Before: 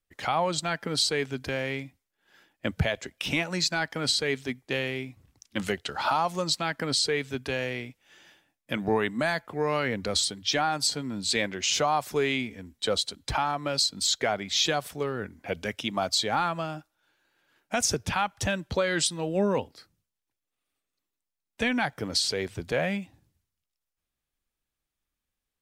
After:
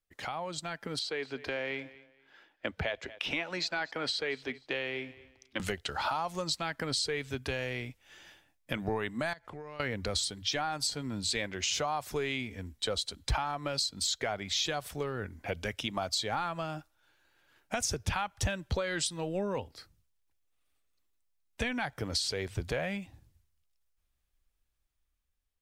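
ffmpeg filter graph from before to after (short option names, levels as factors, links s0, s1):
-filter_complex "[0:a]asettb=1/sr,asplit=3[s0][s1][s2];[s0]atrim=end=0.994[s3];[s1]atrim=start=0.99:end=5.6,asetpts=PTS-STARTPTS,afade=t=in:d=0.004:c=qsin,afade=t=out:st=4.606:d=0.004:c=qsin,acrossover=split=260 4600:gain=0.224 1 0.158[s4][s5][s6];[s4][s5][s6]amix=inputs=3:normalize=0,aecho=1:1:234|468:0.0794|0.0199,atrim=end_sample=203301[s7];[s2]atrim=start=5.596[s8];[s3][s7]acrossfade=d=0.004:c1=hsin:c2=qsin[s9];[s9][s8]acrossfade=d=0.004:c1=qsin:c2=hsin,asettb=1/sr,asplit=3[s10][s11][s12];[s10]atrim=end=9.334[s13];[s11]atrim=start=9.33:end=9.8,asetpts=PTS-STARTPTS,afade=t=in:d=0.004:c=qsin,afade=t=out:st=0.466:d=0.004:c=qsin,lowpass=9000,acompressor=threshold=0.01:ratio=20:attack=3.2:release=140:knee=1:detection=peak[s14];[s12]atrim=start=9.796[s15];[s13][s14]acrossfade=d=0.004:c1=hsin:c2=qsin[s16];[s16][s15]acrossfade=d=0.004:c1=qsin:c2=hsin,acompressor=threshold=0.0224:ratio=2.5,asubboost=boost=3.5:cutoff=92,dynaudnorm=f=310:g=7:m=1.78,volume=0.631"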